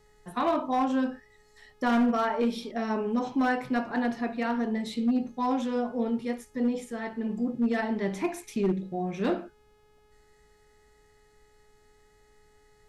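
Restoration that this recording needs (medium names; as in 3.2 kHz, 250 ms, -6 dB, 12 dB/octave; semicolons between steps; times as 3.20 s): clip repair -19.5 dBFS; de-hum 421.6 Hz, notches 34; expander -53 dBFS, range -21 dB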